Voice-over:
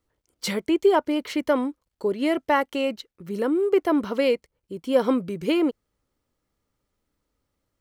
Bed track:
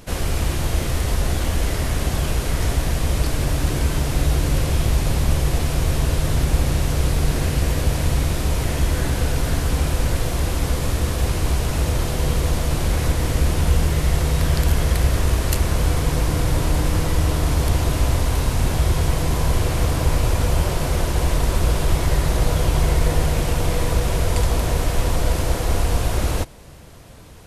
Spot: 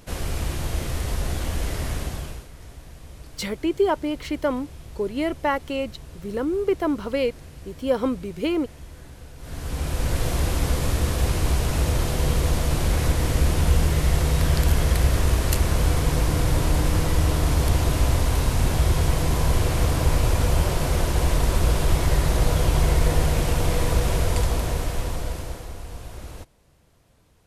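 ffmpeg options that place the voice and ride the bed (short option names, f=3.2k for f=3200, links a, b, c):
-filter_complex "[0:a]adelay=2950,volume=-2dB[a];[1:a]volume=15dB,afade=t=out:st=1.91:d=0.57:silence=0.149624,afade=t=in:st=9.38:d=0.91:silence=0.0944061,afade=t=out:st=24.11:d=1.63:silence=0.16788[b];[a][b]amix=inputs=2:normalize=0"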